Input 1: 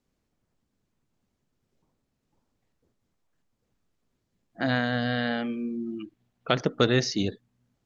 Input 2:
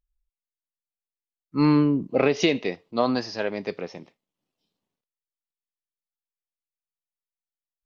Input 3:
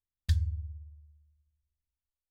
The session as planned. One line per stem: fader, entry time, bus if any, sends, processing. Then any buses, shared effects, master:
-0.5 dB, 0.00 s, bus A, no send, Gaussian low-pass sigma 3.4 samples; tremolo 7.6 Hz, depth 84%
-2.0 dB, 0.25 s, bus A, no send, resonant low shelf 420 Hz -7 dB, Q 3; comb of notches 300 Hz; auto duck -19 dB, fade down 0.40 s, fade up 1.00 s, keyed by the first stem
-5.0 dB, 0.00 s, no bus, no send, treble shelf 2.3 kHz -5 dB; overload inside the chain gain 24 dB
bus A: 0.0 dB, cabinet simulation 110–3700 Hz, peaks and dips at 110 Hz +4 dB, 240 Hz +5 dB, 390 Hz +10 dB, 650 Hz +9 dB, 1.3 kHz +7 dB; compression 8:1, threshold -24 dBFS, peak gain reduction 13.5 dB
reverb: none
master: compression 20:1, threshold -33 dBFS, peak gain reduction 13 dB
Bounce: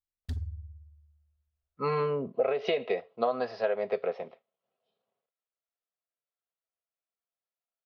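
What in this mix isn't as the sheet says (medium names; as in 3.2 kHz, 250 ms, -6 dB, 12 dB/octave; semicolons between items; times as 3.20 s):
stem 1: muted; master: missing compression 20:1, threshold -33 dBFS, peak gain reduction 13 dB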